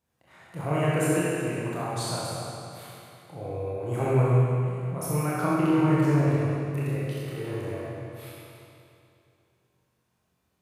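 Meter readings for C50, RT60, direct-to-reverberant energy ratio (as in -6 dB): -4.5 dB, 2.6 s, -8.0 dB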